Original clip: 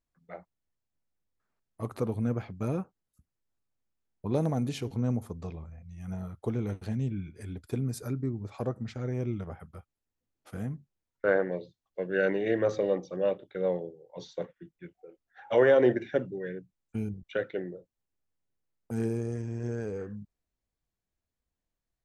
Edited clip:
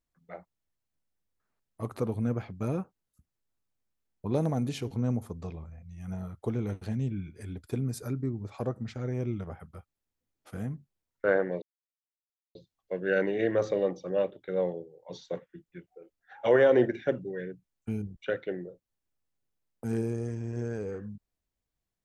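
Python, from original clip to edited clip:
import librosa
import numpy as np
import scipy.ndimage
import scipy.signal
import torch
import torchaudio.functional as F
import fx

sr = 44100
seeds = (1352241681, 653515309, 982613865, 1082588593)

y = fx.edit(x, sr, fx.insert_silence(at_s=11.62, length_s=0.93), tone=tone)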